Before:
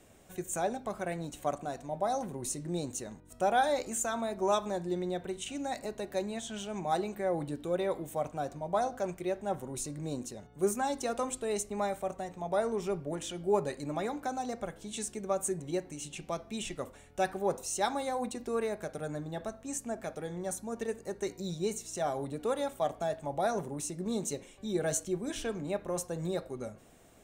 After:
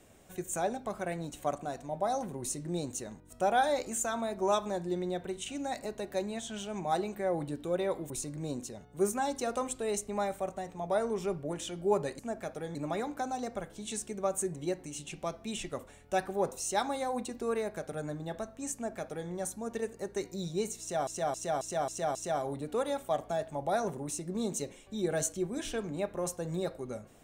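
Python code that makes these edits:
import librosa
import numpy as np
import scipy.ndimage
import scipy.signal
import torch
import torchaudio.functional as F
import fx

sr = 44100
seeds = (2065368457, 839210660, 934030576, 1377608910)

y = fx.edit(x, sr, fx.cut(start_s=8.1, length_s=1.62),
    fx.duplicate(start_s=19.8, length_s=0.56, to_s=13.81),
    fx.repeat(start_s=21.86, length_s=0.27, count=6), tone=tone)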